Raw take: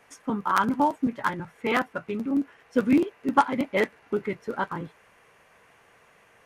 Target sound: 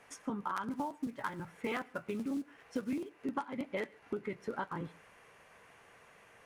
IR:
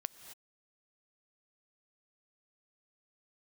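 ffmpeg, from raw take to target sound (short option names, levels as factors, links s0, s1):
-filter_complex "[0:a]acompressor=threshold=0.0251:ratio=8,asplit=3[s0][s1][s2];[s0]afade=t=out:st=0.7:d=0.02[s3];[s1]acrusher=bits=6:mode=log:mix=0:aa=0.000001,afade=t=in:st=0.7:d=0.02,afade=t=out:st=3.17:d=0.02[s4];[s2]afade=t=in:st=3.17:d=0.02[s5];[s3][s4][s5]amix=inputs=3:normalize=0[s6];[1:a]atrim=start_sample=2205,atrim=end_sample=3528,asetrate=22932,aresample=44100[s7];[s6][s7]afir=irnorm=-1:irlink=0,volume=0.708"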